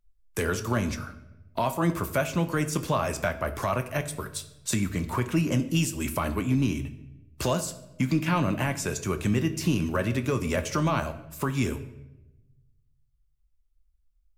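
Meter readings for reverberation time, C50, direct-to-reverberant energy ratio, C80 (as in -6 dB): 1.0 s, 13.0 dB, 8.0 dB, 15.5 dB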